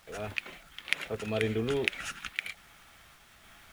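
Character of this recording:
sample-and-hold tremolo
a quantiser's noise floor 10 bits, dither none

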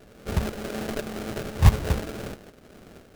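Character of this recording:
a buzz of ramps at a fixed pitch in blocks of 16 samples
tremolo saw up 2 Hz, depth 55%
aliases and images of a low sample rate 1,000 Hz, jitter 20%

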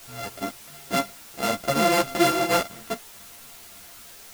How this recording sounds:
a buzz of ramps at a fixed pitch in blocks of 64 samples
sample-and-hold tremolo
a quantiser's noise floor 8 bits, dither triangular
a shimmering, thickened sound

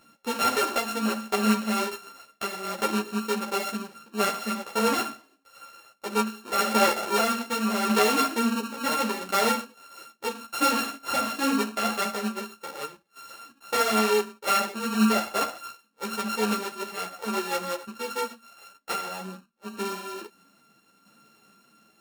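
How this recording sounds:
a buzz of ramps at a fixed pitch in blocks of 32 samples
tremolo saw down 0.76 Hz, depth 45%
a shimmering, thickened sound

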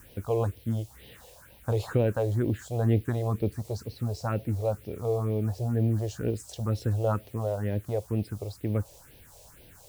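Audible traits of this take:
a quantiser's noise floor 10 bits, dither triangular
phaser sweep stages 4, 2.1 Hz, lowest notch 230–1,300 Hz

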